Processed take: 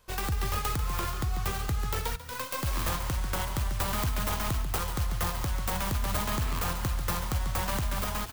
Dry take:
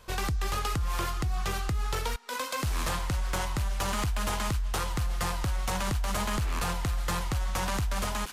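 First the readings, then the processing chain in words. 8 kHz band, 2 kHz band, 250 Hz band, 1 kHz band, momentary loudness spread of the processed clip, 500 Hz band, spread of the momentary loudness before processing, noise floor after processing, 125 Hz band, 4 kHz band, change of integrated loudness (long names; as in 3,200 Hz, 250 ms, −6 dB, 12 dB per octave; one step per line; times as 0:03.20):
−0.5 dB, −1.5 dB, −0.5 dB, −1.0 dB, 2 LU, −1.0 dB, 2 LU, −37 dBFS, 0.0 dB, −1.0 dB, 0.0 dB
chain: stylus tracing distortion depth 0.22 ms
high-shelf EQ 9,100 Hz +8 dB
echo with shifted repeats 141 ms, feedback 37%, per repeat +35 Hz, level −9.5 dB
expander for the loud parts 1.5 to 1, over −44 dBFS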